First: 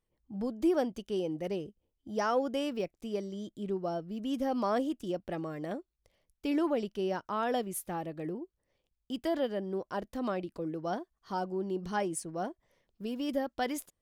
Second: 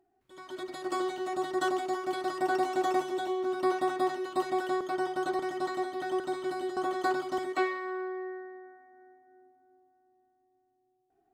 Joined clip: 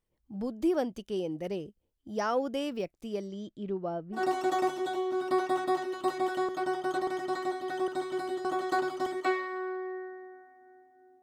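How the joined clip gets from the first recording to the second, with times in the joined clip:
first
0:03.27–0:04.24: low-pass filter 7,800 Hz → 1,400 Hz
0:04.18: continue with second from 0:02.50, crossfade 0.12 s

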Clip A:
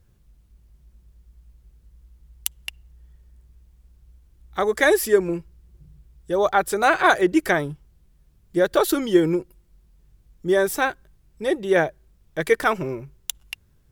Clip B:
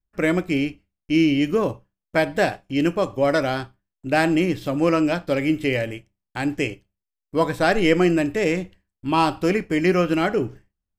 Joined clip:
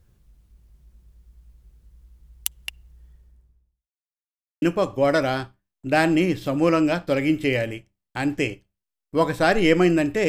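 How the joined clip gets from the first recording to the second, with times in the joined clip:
clip A
0:03.02–0:03.89: fade out and dull
0:03.89–0:04.62: silence
0:04.62: continue with clip B from 0:02.82

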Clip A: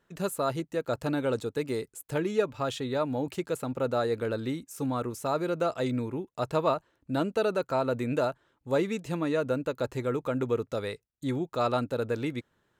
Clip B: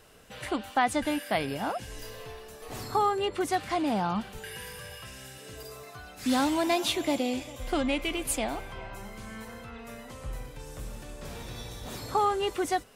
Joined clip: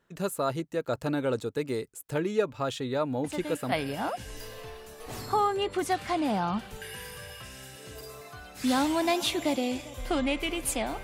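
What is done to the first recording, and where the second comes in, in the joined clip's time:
clip A
0:03.24: mix in clip B from 0:00.86 0.48 s −8 dB
0:03.72: continue with clip B from 0:01.34

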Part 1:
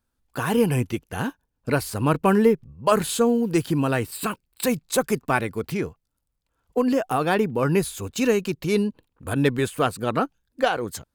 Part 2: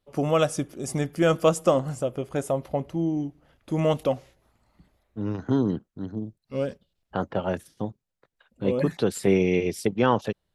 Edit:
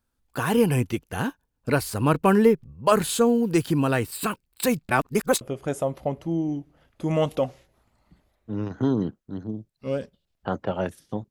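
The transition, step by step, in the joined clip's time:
part 1
0:04.89–0:05.41: reverse
0:05.41: continue with part 2 from 0:02.09

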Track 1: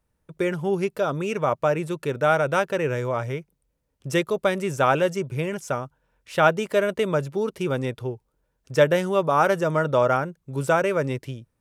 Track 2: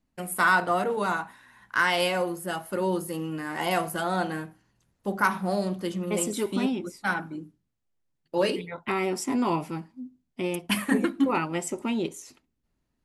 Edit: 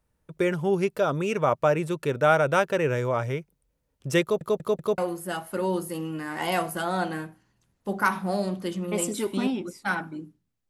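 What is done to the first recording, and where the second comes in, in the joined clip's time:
track 1
0:04.22: stutter in place 0.19 s, 4 plays
0:04.98: continue with track 2 from 0:02.17

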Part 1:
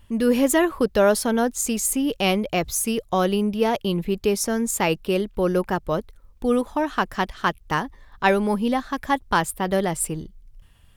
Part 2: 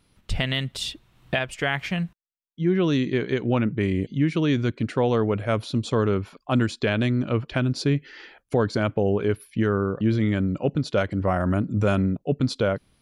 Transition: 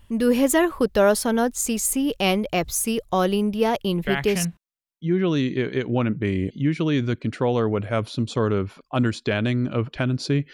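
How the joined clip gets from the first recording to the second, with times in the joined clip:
part 1
0:04.26: continue with part 2 from 0:01.82, crossfade 0.38 s logarithmic

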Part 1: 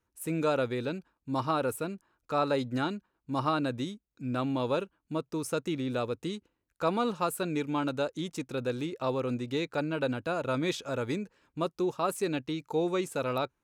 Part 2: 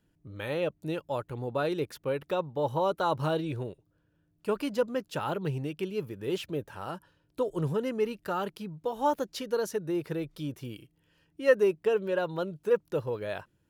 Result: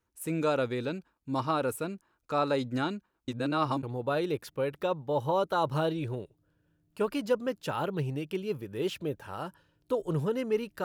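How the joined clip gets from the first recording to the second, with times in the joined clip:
part 1
0:03.28–0:03.83: reverse
0:03.83: continue with part 2 from 0:01.31

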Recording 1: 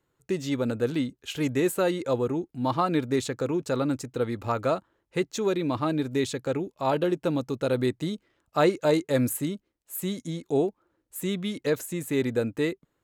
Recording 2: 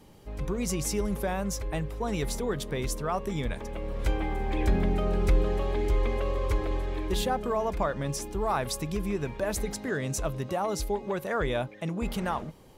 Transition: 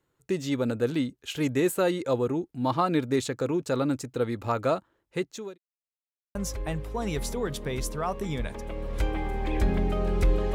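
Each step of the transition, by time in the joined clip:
recording 1
0:04.82–0:05.58: fade out equal-power
0:05.58–0:06.35: silence
0:06.35: continue with recording 2 from 0:01.41

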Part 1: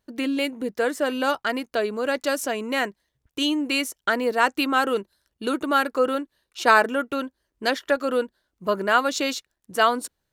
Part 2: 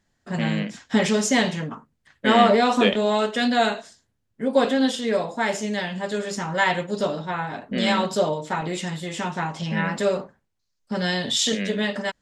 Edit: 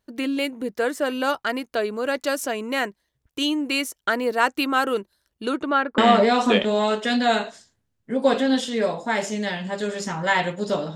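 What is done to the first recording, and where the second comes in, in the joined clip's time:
part 1
0:05.42–0:05.98: low-pass filter 11,000 Hz → 1,300 Hz
0:05.98: continue with part 2 from 0:02.29

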